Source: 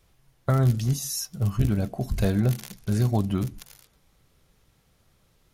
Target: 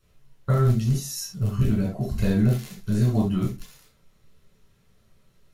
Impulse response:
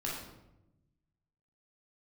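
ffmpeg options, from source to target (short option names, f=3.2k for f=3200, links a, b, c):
-filter_complex "[1:a]atrim=start_sample=2205,afade=t=out:st=0.18:d=0.01,atrim=end_sample=8379,asetrate=66150,aresample=44100[a];[0:a][a]afir=irnorm=-1:irlink=0"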